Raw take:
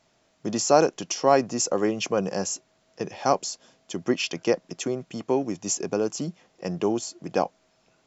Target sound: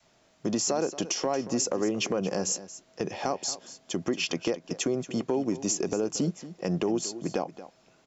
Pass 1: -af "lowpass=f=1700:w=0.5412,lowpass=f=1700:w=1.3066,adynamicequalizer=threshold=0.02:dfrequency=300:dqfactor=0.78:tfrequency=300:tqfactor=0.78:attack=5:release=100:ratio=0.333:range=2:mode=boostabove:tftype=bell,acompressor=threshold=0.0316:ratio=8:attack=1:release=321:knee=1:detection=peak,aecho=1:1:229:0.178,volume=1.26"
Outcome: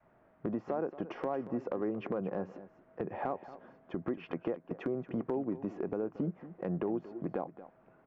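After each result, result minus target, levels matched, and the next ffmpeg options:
compression: peak gain reduction +6.5 dB; 2 kHz band -3.5 dB
-af "lowpass=f=1700:w=0.5412,lowpass=f=1700:w=1.3066,adynamicequalizer=threshold=0.02:dfrequency=300:dqfactor=0.78:tfrequency=300:tqfactor=0.78:attack=5:release=100:ratio=0.333:range=2:mode=boostabove:tftype=bell,acompressor=threshold=0.075:ratio=8:attack=1:release=321:knee=1:detection=peak,aecho=1:1:229:0.178,volume=1.26"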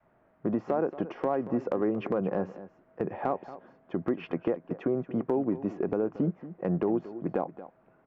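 2 kHz band -5.5 dB
-af "adynamicequalizer=threshold=0.02:dfrequency=300:dqfactor=0.78:tfrequency=300:tqfactor=0.78:attack=5:release=100:ratio=0.333:range=2:mode=boostabove:tftype=bell,acompressor=threshold=0.075:ratio=8:attack=1:release=321:knee=1:detection=peak,aecho=1:1:229:0.178,volume=1.26"

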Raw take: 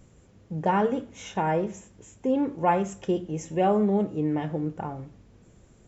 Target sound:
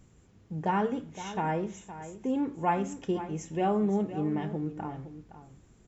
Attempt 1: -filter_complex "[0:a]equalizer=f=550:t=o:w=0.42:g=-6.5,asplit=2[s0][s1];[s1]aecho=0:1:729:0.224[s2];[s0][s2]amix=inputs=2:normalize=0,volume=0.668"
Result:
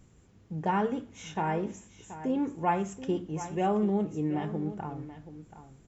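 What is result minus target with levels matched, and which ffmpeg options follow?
echo 214 ms late
-filter_complex "[0:a]equalizer=f=550:t=o:w=0.42:g=-6.5,asplit=2[s0][s1];[s1]aecho=0:1:515:0.224[s2];[s0][s2]amix=inputs=2:normalize=0,volume=0.668"

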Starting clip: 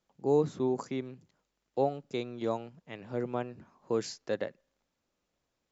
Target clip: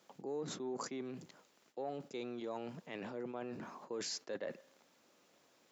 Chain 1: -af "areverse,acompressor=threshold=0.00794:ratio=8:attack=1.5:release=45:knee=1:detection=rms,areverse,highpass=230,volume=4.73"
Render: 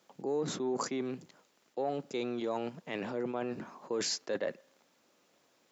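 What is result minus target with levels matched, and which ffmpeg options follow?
compression: peak gain reduction -8 dB
-af "areverse,acompressor=threshold=0.00282:ratio=8:attack=1.5:release=45:knee=1:detection=rms,areverse,highpass=230,volume=4.73"

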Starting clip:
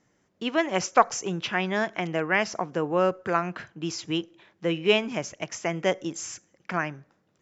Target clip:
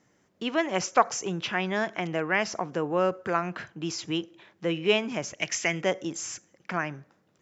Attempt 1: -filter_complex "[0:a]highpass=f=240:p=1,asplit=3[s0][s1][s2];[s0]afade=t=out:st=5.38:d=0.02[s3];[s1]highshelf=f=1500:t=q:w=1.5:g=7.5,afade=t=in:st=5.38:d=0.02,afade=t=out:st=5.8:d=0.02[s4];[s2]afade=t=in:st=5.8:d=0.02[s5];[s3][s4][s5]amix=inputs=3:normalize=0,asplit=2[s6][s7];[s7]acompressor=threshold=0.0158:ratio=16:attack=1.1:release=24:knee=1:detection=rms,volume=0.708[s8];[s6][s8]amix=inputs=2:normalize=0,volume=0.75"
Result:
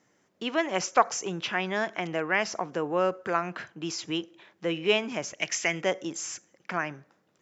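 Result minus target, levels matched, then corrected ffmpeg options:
125 Hz band -3.5 dB
-filter_complex "[0:a]highpass=f=63:p=1,asplit=3[s0][s1][s2];[s0]afade=t=out:st=5.38:d=0.02[s3];[s1]highshelf=f=1500:t=q:w=1.5:g=7.5,afade=t=in:st=5.38:d=0.02,afade=t=out:st=5.8:d=0.02[s4];[s2]afade=t=in:st=5.8:d=0.02[s5];[s3][s4][s5]amix=inputs=3:normalize=0,asplit=2[s6][s7];[s7]acompressor=threshold=0.0158:ratio=16:attack=1.1:release=24:knee=1:detection=rms,volume=0.708[s8];[s6][s8]amix=inputs=2:normalize=0,volume=0.75"

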